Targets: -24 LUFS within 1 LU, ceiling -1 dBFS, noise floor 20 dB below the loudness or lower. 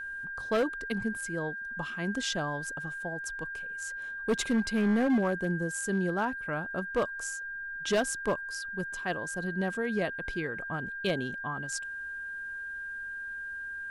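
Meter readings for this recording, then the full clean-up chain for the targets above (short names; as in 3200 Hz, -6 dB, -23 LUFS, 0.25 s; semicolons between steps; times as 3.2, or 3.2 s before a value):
clipped 1.0%; flat tops at -21.5 dBFS; steady tone 1600 Hz; tone level -36 dBFS; loudness -32.5 LUFS; peak -21.5 dBFS; loudness target -24.0 LUFS
-> clip repair -21.5 dBFS; notch 1600 Hz, Q 30; gain +8.5 dB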